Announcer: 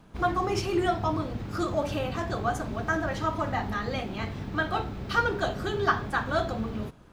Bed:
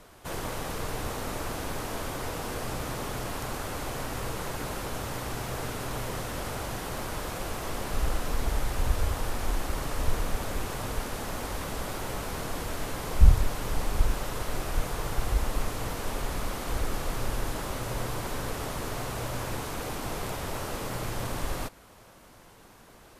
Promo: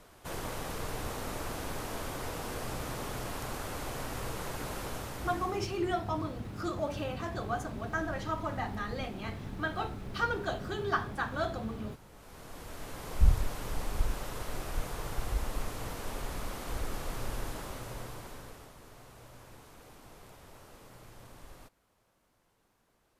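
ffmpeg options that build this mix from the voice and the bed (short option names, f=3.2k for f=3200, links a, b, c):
-filter_complex "[0:a]adelay=5050,volume=-6dB[a];[1:a]volume=13dB,afade=t=out:st=4.89:d=0.82:silence=0.112202,afade=t=in:st=12.11:d=1.22:silence=0.141254,afade=t=out:st=17.4:d=1.33:silence=0.211349[b];[a][b]amix=inputs=2:normalize=0"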